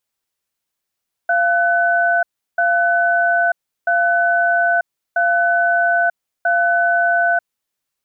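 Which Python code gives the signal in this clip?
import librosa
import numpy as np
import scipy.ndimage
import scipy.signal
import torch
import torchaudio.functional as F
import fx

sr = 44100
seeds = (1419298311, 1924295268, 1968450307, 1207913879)

y = fx.cadence(sr, length_s=6.26, low_hz=691.0, high_hz=1500.0, on_s=0.94, off_s=0.35, level_db=-15.5)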